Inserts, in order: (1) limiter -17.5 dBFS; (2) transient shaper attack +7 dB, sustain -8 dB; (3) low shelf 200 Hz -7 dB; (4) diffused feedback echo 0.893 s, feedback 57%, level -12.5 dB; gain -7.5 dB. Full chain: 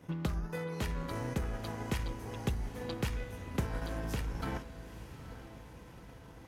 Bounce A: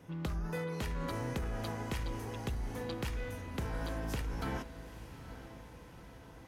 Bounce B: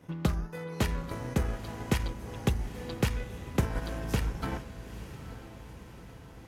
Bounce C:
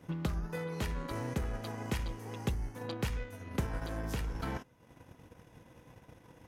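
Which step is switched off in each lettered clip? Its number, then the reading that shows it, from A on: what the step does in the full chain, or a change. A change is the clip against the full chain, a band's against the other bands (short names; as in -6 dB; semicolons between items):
2, crest factor change -3.0 dB; 1, crest factor change +2.5 dB; 4, echo-to-direct -11.0 dB to none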